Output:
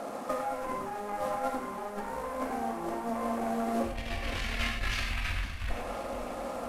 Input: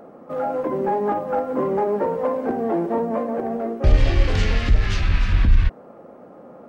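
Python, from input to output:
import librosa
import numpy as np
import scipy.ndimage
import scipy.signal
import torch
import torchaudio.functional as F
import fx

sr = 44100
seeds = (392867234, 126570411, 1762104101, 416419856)

y = fx.cvsd(x, sr, bps=64000)
y = fx.low_shelf(y, sr, hz=270.0, db=-8.0)
y = fx.cheby_harmonics(y, sr, harmonics=(2,), levels_db=(-6,), full_scale_db=-10.0)
y = fx.over_compress(y, sr, threshold_db=-34.0, ratio=-1.0)
y = fx.graphic_eq_15(y, sr, hz=(160, 400, 2500), db=(-8, -9, 3))
y = fx.echo_feedback(y, sr, ms=510, feedback_pct=55, wet_db=-14.0)
y = fx.rev_gated(y, sr, seeds[0], gate_ms=140, shape='flat', drr_db=1.5)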